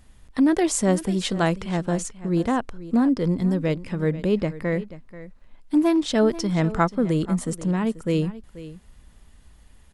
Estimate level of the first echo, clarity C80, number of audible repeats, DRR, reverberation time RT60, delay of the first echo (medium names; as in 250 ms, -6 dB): -16.0 dB, no reverb, 1, no reverb, no reverb, 485 ms